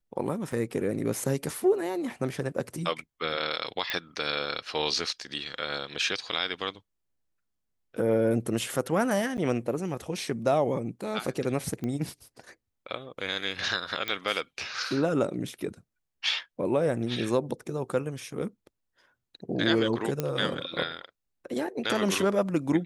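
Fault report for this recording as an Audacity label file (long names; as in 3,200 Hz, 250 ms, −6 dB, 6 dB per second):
0.520000	0.520000	drop-out 3.9 ms
3.900000	3.900000	click −13 dBFS
9.370000	9.380000	drop-out 9.3 ms
11.840000	11.840000	click −21 dBFS
14.080000	14.080000	click −16 dBFS
20.200000	20.200000	click −13 dBFS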